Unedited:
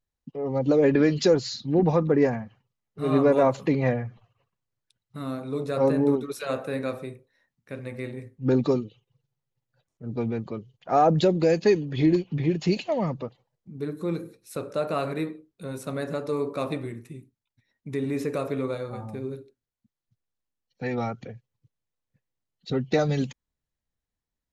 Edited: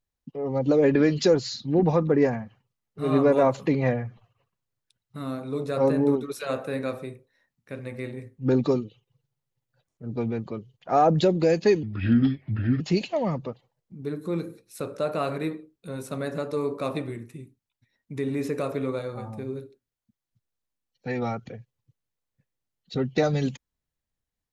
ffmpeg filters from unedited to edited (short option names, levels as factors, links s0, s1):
-filter_complex "[0:a]asplit=3[s0][s1][s2];[s0]atrim=end=11.834[s3];[s1]atrim=start=11.83:end=12.56,asetpts=PTS-STARTPTS,asetrate=33075,aresample=44100[s4];[s2]atrim=start=12.556[s5];[s3][s4]acrossfade=d=0.004:c1=hsin:c2=hsin[s6];[s6][s5]acrossfade=d=0.004:c1=hsin:c2=hsin"